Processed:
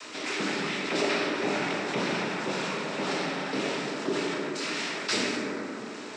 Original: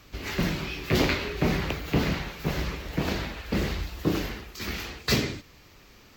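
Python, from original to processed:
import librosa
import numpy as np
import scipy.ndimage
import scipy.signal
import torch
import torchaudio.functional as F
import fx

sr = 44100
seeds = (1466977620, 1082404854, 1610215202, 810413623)

y = fx.noise_vocoder(x, sr, seeds[0], bands=12)
y = scipy.signal.sosfilt(scipy.signal.bessel(4, 310.0, 'highpass', norm='mag', fs=sr, output='sos'), y)
y = fx.rev_plate(y, sr, seeds[1], rt60_s=2.0, hf_ratio=0.4, predelay_ms=0, drr_db=-1.0)
y = fx.env_flatten(y, sr, amount_pct=50)
y = y * 10.0 ** (-4.5 / 20.0)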